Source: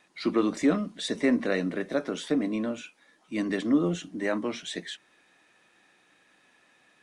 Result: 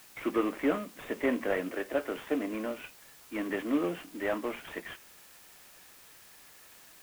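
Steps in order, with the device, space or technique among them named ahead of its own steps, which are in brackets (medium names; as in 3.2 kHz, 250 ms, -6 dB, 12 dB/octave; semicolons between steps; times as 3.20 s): 1.68–2.81 s: high-pass 260 Hz -> 82 Hz 24 dB/octave; army field radio (band-pass 360–3000 Hz; CVSD coder 16 kbps; white noise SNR 21 dB)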